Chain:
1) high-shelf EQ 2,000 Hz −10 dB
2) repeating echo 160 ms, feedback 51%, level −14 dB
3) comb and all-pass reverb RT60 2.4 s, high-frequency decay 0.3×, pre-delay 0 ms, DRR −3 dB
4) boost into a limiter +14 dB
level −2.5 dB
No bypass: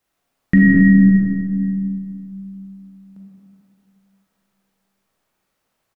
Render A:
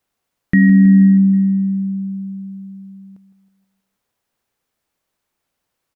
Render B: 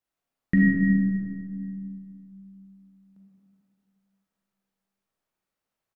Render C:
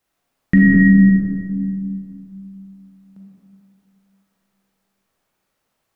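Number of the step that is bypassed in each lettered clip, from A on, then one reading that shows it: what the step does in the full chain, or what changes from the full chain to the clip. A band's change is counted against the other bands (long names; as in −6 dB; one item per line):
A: 3, change in integrated loudness +1.5 LU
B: 4, change in crest factor +4.0 dB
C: 2, change in momentary loudness spread −6 LU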